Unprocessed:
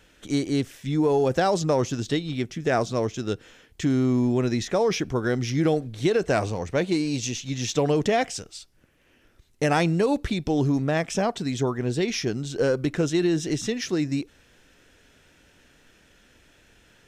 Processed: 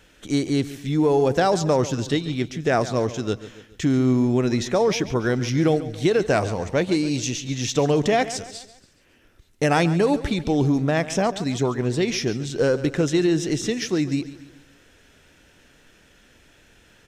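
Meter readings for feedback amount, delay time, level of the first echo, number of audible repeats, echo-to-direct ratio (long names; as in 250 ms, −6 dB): 46%, 140 ms, −15.0 dB, 3, −14.0 dB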